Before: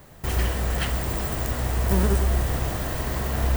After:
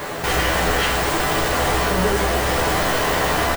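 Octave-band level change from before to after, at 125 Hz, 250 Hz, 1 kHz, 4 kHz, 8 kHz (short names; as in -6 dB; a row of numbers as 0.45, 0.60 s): -2.0, +4.5, +13.0, +13.0, +9.0 dB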